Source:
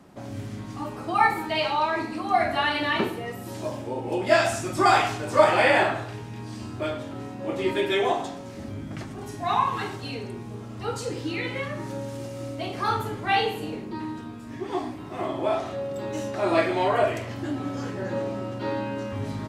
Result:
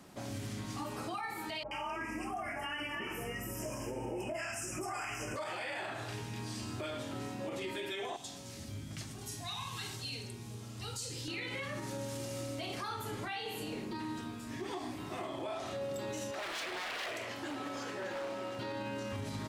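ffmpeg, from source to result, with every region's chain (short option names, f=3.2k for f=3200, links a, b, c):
-filter_complex "[0:a]asettb=1/sr,asplit=3[a][b][c];[a]atrim=end=1.634[d];[b]atrim=start=1.63:end=5.36,asetpts=PTS-STARTPTS,afade=t=in:d=0.004:c=qsin,afade=t=out:st=3.726:d=0.004:c=qsin,acrossover=split=840[e][f];[f]adelay=80[g];[e][g]amix=inputs=2:normalize=0,atrim=end_sample=164493,aeval=exprs='val(0)+0.00631*(sin(2*PI*50*n/s)+sin(2*PI*2*50*n/s)/2+sin(2*PI*3*50*n/s)/3+sin(2*PI*4*50*n/s)/4+sin(2*PI*5*50*n/s)/5)':c=same,asuperstop=centerf=3900:order=12:qfactor=2[h];[c]atrim=start=5.356[i];[d][h]acrossfade=d=0.004:c1=hsin:c2=qsin[j];[j][i]acrossfade=d=0.004:c1=qsin:c2=hsin,asettb=1/sr,asplit=3[k][l][m];[k]atrim=end=8.164[n];[l]atrim=start=8.16:end=11.28,asetpts=PTS-STARTPTS,afade=t=in:d=0.004:c=qsin,afade=t=out:st=3.116:d=0.004:c=qsin,highpass=55,acrossover=split=150|3000[o][p][q];[p]acompressor=threshold=-48dB:ratio=2.5:attack=3.2:release=140:knee=2.83:detection=peak[r];[o][r][q]amix=inputs=3:normalize=0[s];[m]atrim=start=11.276[t];[n][s]acrossfade=d=0.004:c1=hsin:c2=qsin[u];[u][t]acrossfade=d=0.004:c1=qsin:c2=hsin,asettb=1/sr,asplit=3[v][w][x];[v]atrim=end=16.314[y];[w]atrim=start=16.31:end=18.59,asetpts=PTS-STARTPTS,afade=t=in:d=0.004:c=qsin,afade=t=out:st=2.276:d=0.004:c=qsin,aeval=exprs='0.0596*(abs(mod(val(0)/0.0596+3,4)-2)-1)':c=same,bass=f=250:g=-14,treble=f=4k:g=-5[z];[x]atrim=start=18.586[aa];[y][z]acrossfade=d=0.004:c1=hsin:c2=qsin[ab];[ab][aa]acrossfade=d=0.004:c1=qsin:c2=hsin,highshelf=f=2.3k:g=10.5,acompressor=threshold=-29dB:ratio=4,alimiter=level_in=2dB:limit=-24dB:level=0:latency=1:release=37,volume=-2dB,volume=-5dB"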